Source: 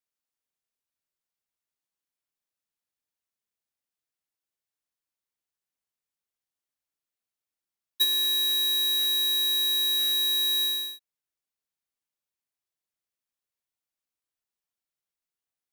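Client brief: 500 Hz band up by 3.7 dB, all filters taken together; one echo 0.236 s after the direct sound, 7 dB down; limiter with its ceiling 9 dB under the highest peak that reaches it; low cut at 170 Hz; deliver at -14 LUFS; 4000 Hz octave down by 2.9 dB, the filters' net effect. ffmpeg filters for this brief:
-af "highpass=170,equalizer=f=500:t=o:g=8,equalizer=f=4k:t=o:g=-3,alimiter=level_in=3dB:limit=-24dB:level=0:latency=1,volume=-3dB,aecho=1:1:236:0.447,volume=15.5dB"

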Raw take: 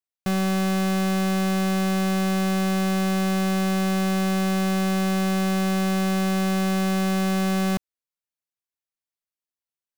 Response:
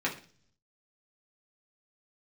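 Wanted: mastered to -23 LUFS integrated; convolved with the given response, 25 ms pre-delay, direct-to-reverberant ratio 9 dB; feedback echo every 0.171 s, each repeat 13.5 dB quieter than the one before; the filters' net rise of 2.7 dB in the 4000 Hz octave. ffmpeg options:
-filter_complex "[0:a]equalizer=f=4k:t=o:g=3.5,aecho=1:1:171|342:0.211|0.0444,asplit=2[a][b];[1:a]atrim=start_sample=2205,adelay=25[c];[b][c]afir=irnorm=-1:irlink=0,volume=-17.5dB[d];[a][d]amix=inputs=2:normalize=0"

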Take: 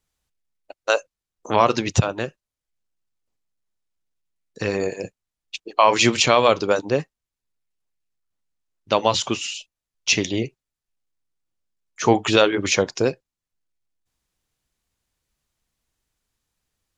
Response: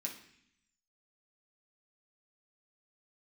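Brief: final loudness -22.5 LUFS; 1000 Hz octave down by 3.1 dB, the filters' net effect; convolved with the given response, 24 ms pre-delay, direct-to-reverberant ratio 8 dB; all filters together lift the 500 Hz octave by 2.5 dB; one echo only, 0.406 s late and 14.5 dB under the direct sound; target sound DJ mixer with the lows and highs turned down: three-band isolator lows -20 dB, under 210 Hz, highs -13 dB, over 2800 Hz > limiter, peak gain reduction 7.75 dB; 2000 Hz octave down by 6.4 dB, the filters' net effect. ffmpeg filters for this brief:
-filter_complex "[0:a]equalizer=f=500:t=o:g=4.5,equalizer=f=1k:t=o:g=-4,equalizer=f=2k:t=o:g=-5,aecho=1:1:406:0.188,asplit=2[a][b];[1:a]atrim=start_sample=2205,adelay=24[c];[b][c]afir=irnorm=-1:irlink=0,volume=-6.5dB[d];[a][d]amix=inputs=2:normalize=0,acrossover=split=210 2800:gain=0.1 1 0.224[e][f][g];[e][f][g]amix=inputs=3:normalize=0,volume=1.5dB,alimiter=limit=-9dB:level=0:latency=1"

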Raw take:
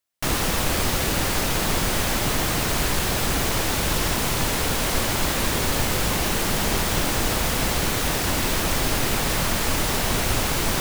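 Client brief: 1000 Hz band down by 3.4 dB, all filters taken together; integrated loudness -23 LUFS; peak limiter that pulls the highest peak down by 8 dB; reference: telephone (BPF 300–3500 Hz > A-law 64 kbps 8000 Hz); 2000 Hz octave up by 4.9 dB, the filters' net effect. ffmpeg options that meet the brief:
-af "equalizer=f=1k:t=o:g=-7,equalizer=f=2k:t=o:g=8.5,alimiter=limit=-15.5dB:level=0:latency=1,highpass=300,lowpass=3.5k,volume=4.5dB" -ar 8000 -c:a pcm_alaw

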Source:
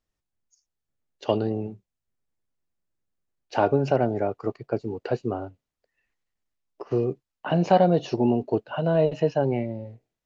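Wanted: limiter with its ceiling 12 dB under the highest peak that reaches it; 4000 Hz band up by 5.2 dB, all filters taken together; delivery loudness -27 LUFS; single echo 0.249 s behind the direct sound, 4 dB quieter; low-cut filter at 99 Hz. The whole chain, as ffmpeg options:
-af "highpass=99,equalizer=f=4k:t=o:g=8,alimiter=limit=-18dB:level=0:latency=1,aecho=1:1:249:0.631,volume=2dB"

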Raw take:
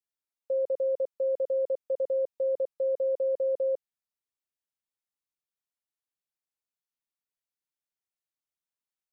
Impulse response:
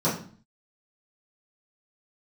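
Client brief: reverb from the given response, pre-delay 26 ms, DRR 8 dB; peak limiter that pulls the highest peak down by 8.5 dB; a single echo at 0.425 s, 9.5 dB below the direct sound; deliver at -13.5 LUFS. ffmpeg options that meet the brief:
-filter_complex "[0:a]alimiter=level_in=8dB:limit=-24dB:level=0:latency=1,volume=-8dB,aecho=1:1:425:0.335,asplit=2[a][b];[1:a]atrim=start_sample=2205,adelay=26[c];[b][c]afir=irnorm=-1:irlink=0,volume=-21.5dB[d];[a][d]amix=inputs=2:normalize=0,volume=25dB"

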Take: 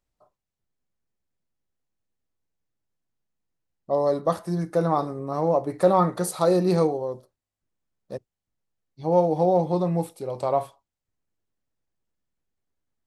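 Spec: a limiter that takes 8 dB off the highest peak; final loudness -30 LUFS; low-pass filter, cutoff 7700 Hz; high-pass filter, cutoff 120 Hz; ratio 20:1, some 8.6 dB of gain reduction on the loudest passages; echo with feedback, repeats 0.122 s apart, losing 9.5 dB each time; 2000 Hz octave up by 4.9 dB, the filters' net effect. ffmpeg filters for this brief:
-af "highpass=120,lowpass=7.7k,equalizer=f=2k:t=o:g=6.5,acompressor=threshold=-21dB:ratio=20,alimiter=limit=-19dB:level=0:latency=1,aecho=1:1:122|244|366|488:0.335|0.111|0.0365|0.012,volume=-0.5dB"

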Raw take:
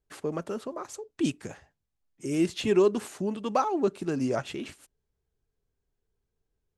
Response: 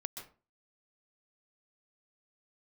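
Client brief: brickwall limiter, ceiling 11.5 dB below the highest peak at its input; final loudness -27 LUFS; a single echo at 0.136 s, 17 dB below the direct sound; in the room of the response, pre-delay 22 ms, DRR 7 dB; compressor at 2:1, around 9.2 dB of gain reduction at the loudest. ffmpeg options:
-filter_complex "[0:a]acompressor=threshold=-34dB:ratio=2,alimiter=level_in=5.5dB:limit=-24dB:level=0:latency=1,volume=-5.5dB,aecho=1:1:136:0.141,asplit=2[a][b];[1:a]atrim=start_sample=2205,adelay=22[c];[b][c]afir=irnorm=-1:irlink=0,volume=-5.5dB[d];[a][d]amix=inputs=2:normalize=0,volume=11.5dB"

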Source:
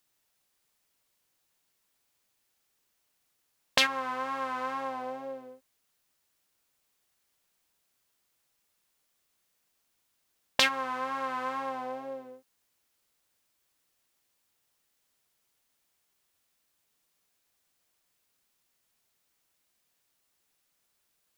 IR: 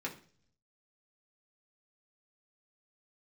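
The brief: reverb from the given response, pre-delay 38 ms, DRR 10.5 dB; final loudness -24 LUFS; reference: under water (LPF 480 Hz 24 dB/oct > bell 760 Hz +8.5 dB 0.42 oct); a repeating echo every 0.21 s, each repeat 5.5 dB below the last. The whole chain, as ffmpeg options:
-filter_complex "[0:a]aecho=1:1:210|420|630|840|1050|1260|1470:0.531|0.281|0.149|0.079|0.0419|0.0222|0.0118,asplit=2[a][b];[1:a]atrim=start_sample=2205,adelay=38[c];[b][c]afir=irnorm=-1:irlink=0,volume=-12.5dB[d];[a][d]amix=inputs=2:normalize=0,lowpass=f=480:w=0.5412,lowpass=f=480:w=1.3066,equalizer=f=760:t=o:w=0.42:g=8.5,volume=17dB"

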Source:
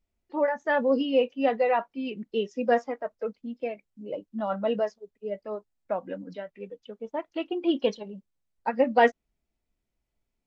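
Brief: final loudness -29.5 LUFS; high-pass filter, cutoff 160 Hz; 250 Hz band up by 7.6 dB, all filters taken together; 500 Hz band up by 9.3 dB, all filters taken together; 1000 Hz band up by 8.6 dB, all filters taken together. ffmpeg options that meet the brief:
-af "highpass=160,equalizer=f=250:t=o:g=7,equalizer=f=500:t=o:g=7,equalizer=f=1k:t=o:g=8,volume=-10dB"

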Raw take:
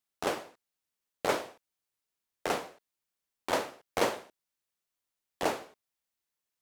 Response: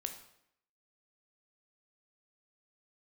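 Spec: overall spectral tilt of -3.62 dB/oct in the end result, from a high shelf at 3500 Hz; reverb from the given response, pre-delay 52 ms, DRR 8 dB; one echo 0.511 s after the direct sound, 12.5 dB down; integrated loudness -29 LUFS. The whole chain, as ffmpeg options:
-filter_complex "[0:a]highshelf=f=3.5k:g=-5.5,aecho=1:1:511:0.237,asplit=2[a][b];[1:a]atrim=start_sample=2205,adelay=52[c];[b][c]afir=irnorm=-1:irlink=0,volume=-7dB[d];[a][d]amix=inputs=2:normalize=0,volume=7dB"

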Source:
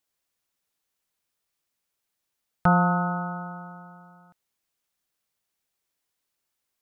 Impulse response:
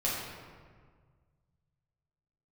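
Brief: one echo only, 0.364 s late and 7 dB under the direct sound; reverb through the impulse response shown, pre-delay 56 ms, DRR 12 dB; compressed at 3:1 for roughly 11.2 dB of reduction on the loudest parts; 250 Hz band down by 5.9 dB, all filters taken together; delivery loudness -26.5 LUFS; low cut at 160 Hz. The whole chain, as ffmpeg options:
-filter_complex "[0:a]highpass=160,equalizer=f=250:t=o:g=-7.5,acompressor=threshold=-33dB:ratio=3,aecho=1:1:364:0.447,asplit=2[a][b];[1:a]atrim=start_sample=2205,adelay=56[c];[b][c]afir=irnorm=-1:irlink=0,volume=-19.5dB[d];[a][d]amix=inputs=2:normalize=0,volume=10.5dB"

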